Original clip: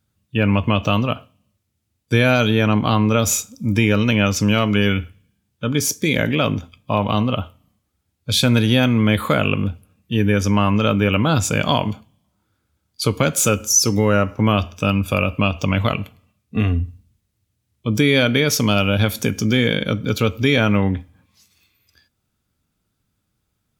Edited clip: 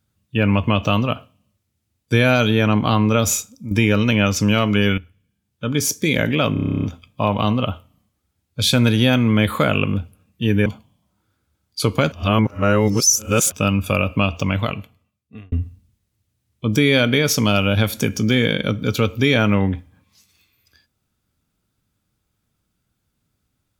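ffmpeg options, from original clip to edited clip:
ffmpeg -i in.wav -filter_complex "[0:a]asplit=17[link_01][link_02][link_03][link_04][link_05][link_06][link_07][link_08][link_09][link_10][link_11][link_12][link_13][link_14][link_15][link_16][link_17];[link_01]atrim=end=3.71,asetpts=PTS-STARTPTS,afade=type=out:start_time=3.28:duration=0.43:silence=0.281838[link_18];[link_02]atrim=start=3.71:end=4.98,asetpts=PTS-STARTPTS,afade=type=in:duration=0.004:curve=hsin:silence=0.281838,afade=type=out:start_time=1.266:duration=0.004:curve=hsin:silence=0.211349[link_19];[link_03]atrim=start=4.98:end=6.562,asetpts=PTS-STARTPTS,afade=type=in:duration=0.86:silence=0.211349[link_20];[link_04]atrim=start=6.528:end=6.562[link_21];[link_05]atrim=start=6.528:end=6.562[link_22];[link_06]atrim=start=6.528:end=6.562[link_23];[link_07]atrim=start=6.528:end=6.562[link_24];[link_08]atrim=start=6.528:end=6.562[link_25];[link_09]atrim=start=6.528:end=6.562[link_26];[link_10]atrim=start=6.528:end=6.562[link_27];[link_11]atrim=start=6.528:end=6.562[link_28];[link_12]atrim=start=6.528:end=6.562[link_29];[link_13]atrim=start=6.528:end=10.362[link_30];[link_14]atrim=start=11.878:end=13.342[link_31];[link_15]atrim=start=13.338:end=14.742,asetpts=PTS-STARTPTS,areverse[link_32];[link_16]atrim=start=14.738:end=16.74,asetpts=PTS-STARTPTS,afade=type=out:start_time=0.782:duration=1.22[link_33];[link_17]atrim=start=16.74,asetpts=PTS-STARTPTS,afade=type=in:duration=0.004:curve=hsin[link_34];[link_18][link_19][link_20]concat=n=3:v=0:a=1[link_35];[link_35][link_21]acrossfade=duration=0.004:curve1=hsin:curve2=hsin[link_36];[link_36][link_22]acrossfade=duration=0.004:curve1=hsin:curve2=hsin[link_37];[link_37][link_23]acrossfade=duration=0.004:curve1=hsin:curve2=hsin[link_38];[link_38][link_24]acrossfade=duration=0.004:curve1=hsin:curve2=hsin[link_39];[link_39][link_25]acrossfade=duration=0.004:curve1=hsin:curve2=hsin[link_40];[link_40][link_26]acrossfade=duration=0.004:curve1=hsin:curve2=hsin[link_41];[link_41][link_27]acrossfade=duration=0.004:curve1=hsin:curve2=hsin[link_42];[link_42][link_28]acrossfade=duration=0.004:curve1=hsin:curve2=hsin[link_43];[link_43][link_29]acrossfade=duration=0.004:curve1=hsin:curve2=hsin[link_44];[link_44][link_30]acrossfade=duration=0.004:curve1=hsin:curve2=hsin[link_45];[link_45][link_31]acrossfade=duration=0.004:curve1=hsin:curve2=hsin[link_46];[link_46][link_32]acrossfade=duration=0.004:curve1=hsin:curve2=hsin[link_47];[link_33][link_34]concat=n=2:v=0:a=1[link_48];[link_47][link_48]acrossfade=duration=0.004:curve1=hsin:curve2=hsin" out.wav

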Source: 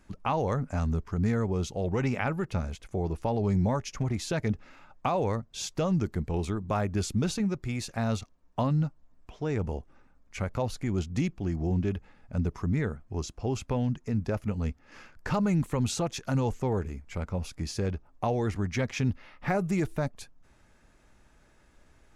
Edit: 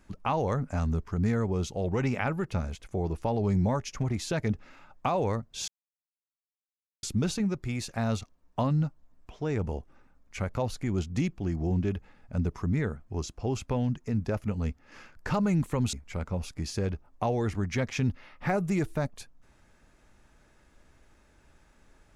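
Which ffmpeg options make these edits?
ffmpeg -i in.wav -filter_complex "[0:a]asplit=4[link_01][link_02][link_03][link_04];[link_01]atrim=end=5.68,asetpts=PTS-STARTPTS,afade=type=out:start_time=5.676:duration=0.004:curve=hsin[link_05];[link_02]atrim=start=5.68:end=7.03,asetpts=PTS-STARTPTS,volume=0[link_06];[link_03]atrim=start=7.03:end=15.932,asetpts=PTS-STARTPTS,afade=type=in:duration=0.004:curve=hsin[link_07];[link_04]atrim=start=16.938[link_08];[link_05][link_06][link_07]concat=n=3:v=0:a=1[link_09];[link_09][link_08]acrossfade=duration=0.004:curve1=hsin:curve2=hsin" out.wav

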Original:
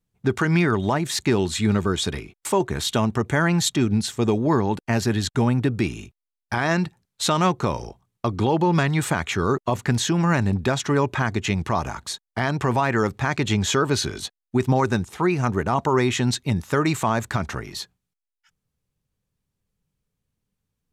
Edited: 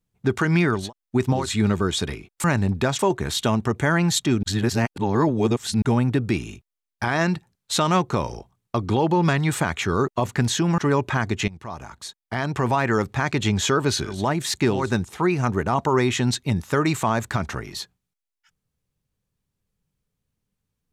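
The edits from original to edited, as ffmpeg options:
ffmpeg -i in.wav -filter_complex "[0:a]asplit=11[link_01][link_02][link_03][link_04][link_05][link_06][link_07][link_08][link_09][link_10][link_11];[link_01]atrim=end=0.93[link_12];[link_02]atrim=start=14.09:end=14.92[link_13];[link_03]atrim=start=1.33:end=2.492[link_14];[link_04]atrim=start=10.278:end=10.832[link_15];[link_05]atrim=start=2.488:end=3.932[link_16];[link_06]atrim=start=3.928:end=5.322,asetpts=PTS-STARTPTS,areverse[link_17];[link_07]atrim=start=5.318:end=10.282[link_18];[link_08]atrim=start=10.828:end=11.53,asetpts=PTS-STARTPTS,afade=type=out:start_time=0.698:duration=0.004:curve=hsin:silence=0.125893[link_19];[link_09]atrim=start=11.53:end=14.33,asetpts=PTS-STARTPTS,afade=type=in:duration=1.27:silence=0.125893[link_20];[link_10]atrim=start=0.69:end=1.57[link_21];[link_11]atrim=start=14.68[link_22];[link_12][link_13]acrossfade=duration=0.24:curve1=tri:curve2=tri[link_23];[link_23][link_14]acrossfade=duration=0.24:curve1=tri:curve2=tri[link_24];[link_24][link_15]acrossfade=duration=0.004:curve1=hsin:curve2=hsin[link_25];[link_25][link_16]acrossfade=duration=0.004:curve1=hsin:curve2=hsin[link_26];[link_26][link_17]acrossfade=duration=0.004:curve1=hsin:curve2=hsin[link_27];[link_27][link_18]acrossfade=duration=0.004:curve1=hsin:curve2=hsin[link_28];[link_19][link_20]concat=n=2:v=0:a=1[link_29];[link_28][link_29]acrossfade=duration=0.004:curve1=hsin:curve2=hsin[link_30];[link_30][link_21]acrossfade=duration=0.24:curve1=tri:curve2=tri[link_31];[link_31][link_22]acrossfade=duration=0.24:curve1=tri:curve2=tri" out.wav

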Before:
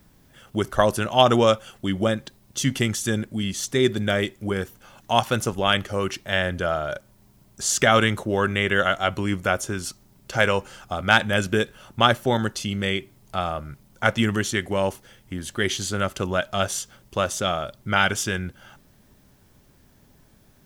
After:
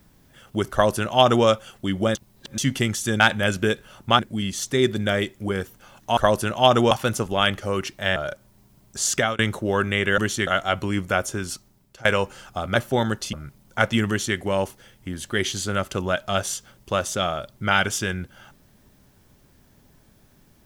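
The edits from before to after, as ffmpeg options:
ffmpeg -i in.wav -filter_complex "[0:a]asplit=14[link_01][link_02][link_03][link_04][link_05][link_06][link_07][link_08][link_09][link_10][link_11][link_12][link_13][link_14];[link_01]atrim=end=2.152[link_15];[link_02]atrim=start=2.148:end=2.582,asetpts=PTS-STARTPTS,areverse[link_16];[link_03]atrim=start=2.578:end=3.202[link_17];[link_04]atrim=start=11.098:end=12.092[link_18];[link_05]atrim=start=3.198:end=5.182[link_19];[link_06]atrim=start=0.718:end=1.462[link_20];[link_07]atrim=start=5.178:end=6.432[link_21];[link_08]atrim=start=6.798:end=8.03,asetpts=PTS-STARTPTS,afade=type=out:start_time=0.872:duration=0.36:curve=qsin[link_22];[link_09]atrim=start=8.03:end=8.822,asetpts=PTS-STARTPTS,afade=type=in:duration=0.004:curve=hsin[link_23];[link_10]atrim=start=14.328:end=14.622[link_24];[link_11]atrim=start=8.818:end=10.4,asetpts=PTS-STARTPTS,afade=type=out:start_time=1.052:duration=0.53:silence=0.0944061[link_25];[link_12]atrim=start=10.4:end=11.102,asetpts=PTS-STARTPTS,afade=type=in:duration=0.004:curve=hsin:silence=0.0944061[link_26];[link_13]atrim=start=12.088:end=12.672[link_27];[link_14]atrim=start=13.578[link_28];[link_15][link_16]acrossfade=duration=0.004:curve1=hsin:curve2=hsin[link_29];[link_29][link_17]acrossfade=duration=0.004:curve1=hsin:curve2=hsin[link_30];[link_30][link_18]acrossfade=duration=0.004:curve1=hsin:curve2=hsin[link_31];[link_31][link_19]acrossfade=duration=0.004:curve1=hsin:curve2=hsin[link_32];[link_32][link_20]acrossfade=duration=0.004:curve1=hsin:curve2=hsin[link_33];[link_33][link_21]acrossfade=duration=0.004:curve1=hsin:curve2=hsin[link_34];[link_22][link_23]concat=n=2:v=0:a=1[link_35];[link_34][link_35]acrossfade=duration=0.004:curve1=hsin:curve2=hsin[link_36];[link_36][link_24]acrossfade=duration=0.004:curve1=hsin:curve2=hsin[link_37];[link_25][link_26]concat=n=2:v=0:a=1[link_38];[link_37][link_38]acrossfade=duration=0.004:curve1=hsin:curve2=hsin[link_39];[link_39][link_27]acrossfade=duration=0.004:curve1=hsin:curve2=hsin[link_40];[link_40][link_28]acrossfade=duration=0.004:curve1=hsin:curve2=hsin" out.wav

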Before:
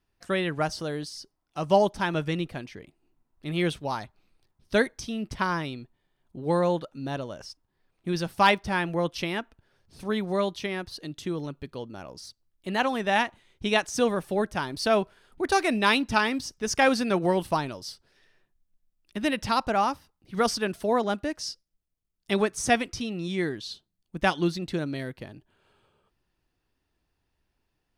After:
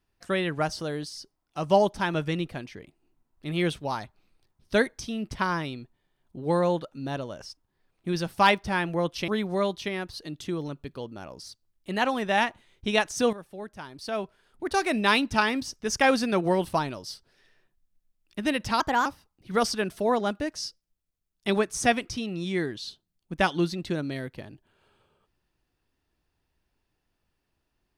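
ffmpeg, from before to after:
ffmpeg -i in.wav -filter_complex "[0:a]asplit=5[link_01][link_02][link_03][link_04][link_05];[link_01]atrim=end=9.282[link_06];[link_02]atrim=start=10.058:end=14.11,asetpts=PTS-STARTPTS,afade=type=out:start_time=4.048:duration=0.004:curve=hsin:silence=0.211349[link_07];[link_03]atrim=start=14.11:end=19.584,asetpts=PTS-STARTPTS,afade=type=in:duration=1.71:curve=qua:silence=0.211349[link_08];[link_04]atrim=start=19.58:end=19.89,asetpts=PTS-STARTPTS,asetrate=53361,aresample=44100,atrim=end_sample=11298,asetpts=PTS-STARTPTS[link_09];[link_05]atrim=start=19.886[link_10];[link_07][link_08]concat=n=2:v=0:a=1[link_11];[link_06][link_11]acrossfade=duration=0.004:curve1=hsin:curve2=hsin[link_12];[link_12][link_09]acrossfade=duration=0.004:curve1=hsin:curve2=hsin[link_13];[link_13][link_10]acrossfade=duration=0.004:curve1=hsin:curve2=hsin" out.wav

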